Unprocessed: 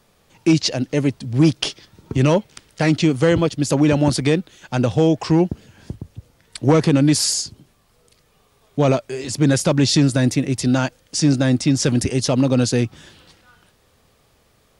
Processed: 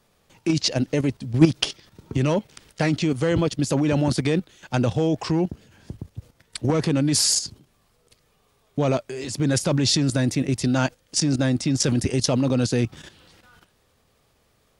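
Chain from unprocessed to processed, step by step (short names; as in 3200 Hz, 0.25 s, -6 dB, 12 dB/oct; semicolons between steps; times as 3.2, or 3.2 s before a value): level quantiser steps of 11 dB; gain +2 dB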